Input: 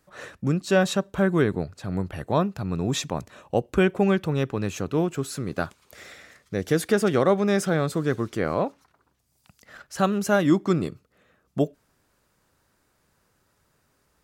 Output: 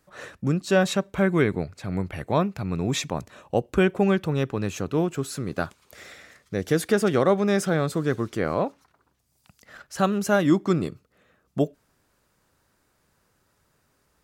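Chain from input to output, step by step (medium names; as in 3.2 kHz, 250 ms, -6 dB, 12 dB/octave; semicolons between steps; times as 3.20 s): 0.86–3.09 s: peaking EQ 2.2 kHz +10.5 dB 0.23 oct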